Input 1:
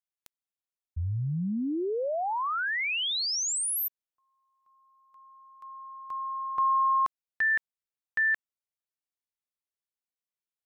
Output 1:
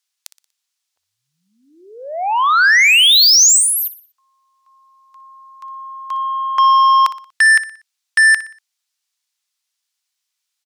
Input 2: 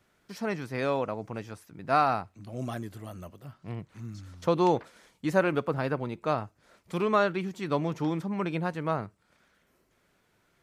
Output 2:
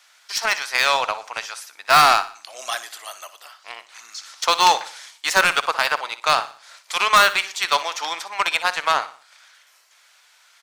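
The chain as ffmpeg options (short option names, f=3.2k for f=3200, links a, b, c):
-filter_complex "[0:a]acrossover=split=2900[a][b];[b]acompressor=threshold=-35dB:ratio=4:attack=1:release=60[c];[a][c]amix=inputs=2:normalize=0,highpass=f=760:w=0.5412,highpass=f=760:w=1.3066,equalizer=f=5.2k:w=0.47:g=12.5,aeval=exprs='0.316*(cos(1*acos(clip(val(0)/0.316,-1,1)))-cos(1*PI/2))+0.00631*(cos(5*acos(clip(val(0)/0.316,-1,1)))-cos(5*PI/2))+0.0355*(cos(7*acos(clip(val(0)/0.316,-1,1)))-cos(7*PI/2))':c=same,apsyclip=26.5dB,asplit=2[d][e];[e]aecho=0:1:60|120|180|240:0.178|0.0747|0.0314|0.0132[f];[d][f]amix=inputs=2:normalize=0,volume=-6.5dB"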